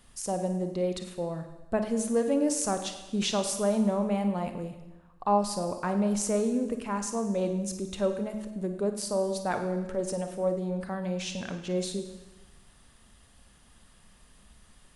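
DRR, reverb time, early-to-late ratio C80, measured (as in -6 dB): 6.5 dB, 1.1 s, 10.0 dB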